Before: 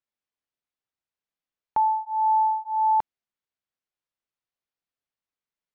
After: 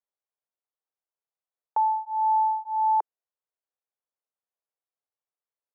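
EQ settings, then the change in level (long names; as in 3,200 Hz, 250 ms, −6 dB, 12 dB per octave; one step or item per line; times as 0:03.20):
Butterworth high-pass 410 Hz
low-pass filter 1,100 Hz 12 dB per octave
0.0 dB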